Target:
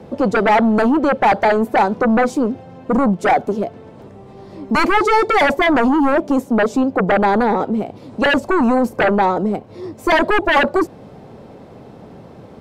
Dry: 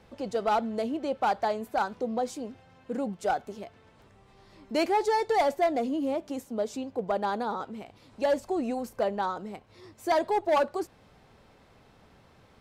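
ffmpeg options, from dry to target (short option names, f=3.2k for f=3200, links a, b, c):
-filter_complex "[0:a]acrossover=split=110|760|2100[a][b][c][d];[b]aeval=exprs='0.112*sin(PI/2*3.55*val(0)/0.112)':c=same[e];[a][e][c][d]amix=inputs=4:normalize=0,volume=7.5dB"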